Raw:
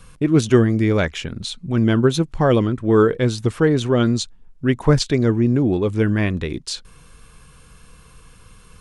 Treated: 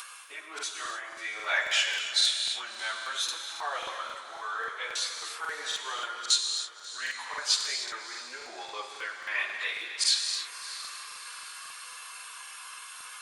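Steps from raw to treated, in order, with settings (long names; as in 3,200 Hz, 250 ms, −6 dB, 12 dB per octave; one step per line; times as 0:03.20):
reversed playback
downward compressor 12 to 1, threshold −24 dBFS, peak gain reduction 17 dB
reversed playback
high-pass filter 900 Hz 24 dB per octave
time stretch by phase vocoder 1.5×
in parallel at +3 dB: upward compression, threshold −44 dBFS
on the sum: feedback delay with all-pass diffusion 637 ms, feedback 48%, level −15 dB
convolution reverb, pre-delay 3 ms, DRR 4 dB
regular buffer underruns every 0.27 s, samples 2,048, repeat, from 0:00.54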